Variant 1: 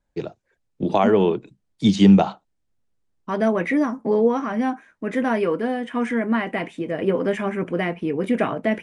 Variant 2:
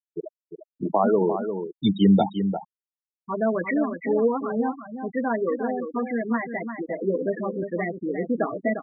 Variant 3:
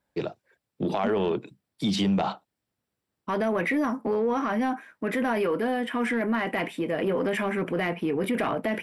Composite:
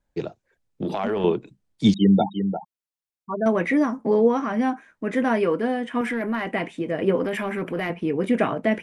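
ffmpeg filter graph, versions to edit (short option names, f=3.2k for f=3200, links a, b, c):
-filter_complex "[2:a]asplit=3[a][b][c];[0:a]asplit=5[d][e][f][g][h];[d]atrim=end=0.822[i];[a]atrim=start=0.818:end=1.242[j];[e]atrim=start=1.238:end=1.942[k];[1:a]atrim=start=1.938:end=3.462[l];[f]atrim=start=3.458:end=6.012[m];[b]atrim=start=6.008:end=6.462[n];[g]atrim=start=6.458:end=7.242[o];[c]atrim=start=7.238:end=7.902[p];[h]atrim=start=7.898[q];[i][j]acrossfade=d=0.004:c1=hsin:c2=hsin[r];[r][k]acrossfade=d=0.004:c1=hsin:c2=hsin[s];[s][l]acrossfade=d=0.004:c1=hsin:c2=hsin[t];[t][m]acrossfade=d=0.004:c1=hsin:c2=hsin[u];[u][n]acrossfade=d=0.004:c1=hsin:c2=hsin[v];[v][o]acrossfade=d=0.004:c1=hsin:c2=hsin[w];[w][p]acrossfade=d=0.004:c1=hsin:c2=hsin[x];[x][q]acrossfade=d=0.004:c1=hsin:c2=hsin"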